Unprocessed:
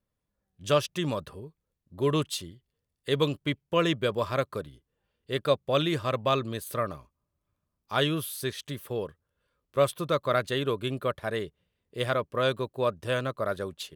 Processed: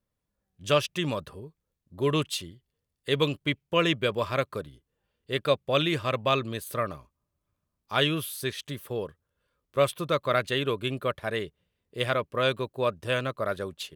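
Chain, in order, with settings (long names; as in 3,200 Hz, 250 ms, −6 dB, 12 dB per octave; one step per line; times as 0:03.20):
dynamic equaliser 2,500 Hz, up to +6 dB, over −45 dBFS, Q 1.7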